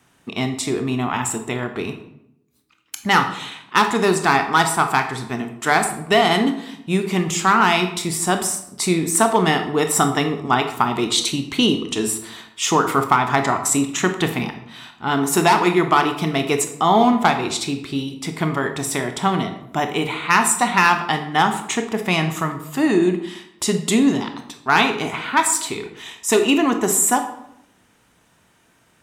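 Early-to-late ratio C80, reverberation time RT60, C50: 12.5 dB, 0.75 s, 9.5 dB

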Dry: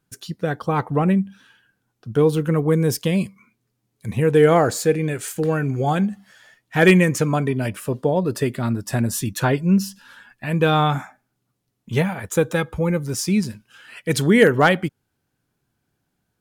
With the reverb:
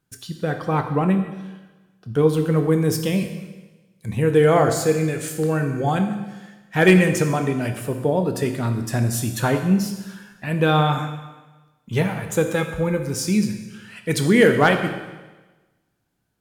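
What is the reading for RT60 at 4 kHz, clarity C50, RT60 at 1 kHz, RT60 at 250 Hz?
1.2 s, 8.0 dB, 1.2 s, 1.2 s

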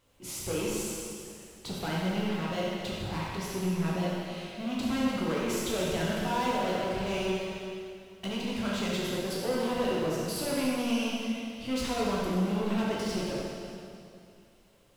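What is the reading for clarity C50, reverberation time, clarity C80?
-3.0 dB, 2.5 s, -1.0 dB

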